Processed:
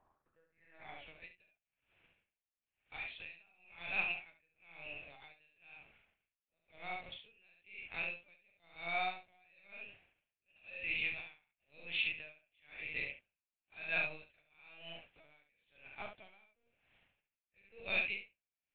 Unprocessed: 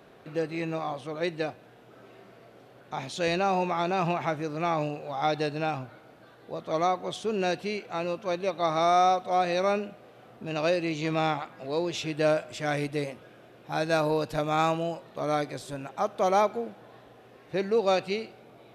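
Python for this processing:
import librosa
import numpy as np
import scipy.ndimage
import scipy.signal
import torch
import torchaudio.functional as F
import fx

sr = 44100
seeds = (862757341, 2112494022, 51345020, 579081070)

y = fx.peak_eq(x, sr, hz=1100.0, db=-9.0, octaves=0.87)
y = fx.notch(y, sr, hz=990.0, q=14.0)
y = fx.backlash(y, sr, play_db=-45.0)
y = fx.filter_sweep_bandpass(y, sr, from_hz=950.0, to_hz=2500.0, start_s=0.06, end_s=1.05, q=5.1)
y = fx.lpc_vocoder(y, sr, seeds[0], excitation='pitch_kept', order=10)
y = fx.room_early_taps(y, sr, ms=(41, 71), db=(-7.5, -4.5))
y = y * 10.0 ** (-34 * (0.5 - 0.5 * np.cos(2.0 * np.pi * 1.0 * np.arange(len(y)) / sr)) / 20.0)
y = F.gain(torch.from_numpy(y), 7.5).numpy()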